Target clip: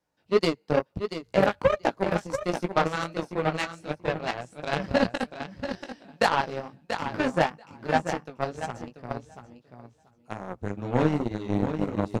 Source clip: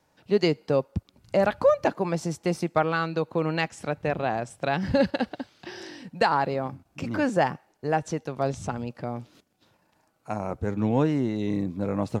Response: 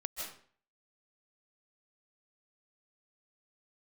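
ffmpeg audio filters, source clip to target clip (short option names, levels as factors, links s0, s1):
-af "flanger=delay=15.5:depth=4.9:speed=2.2,aecho=1:1:685|1370|2055:0.562|0.124|0.0272,aeval=exprs='0.282*(cos(1*acos(clip(val(0)/0.282,-1,1)))-cos(1*PI/2))+0.0316*(cos(7*acos(clip(val(0)/0.282,-1,1)))-cos(7*PI/2))':c=same,volume=1.5"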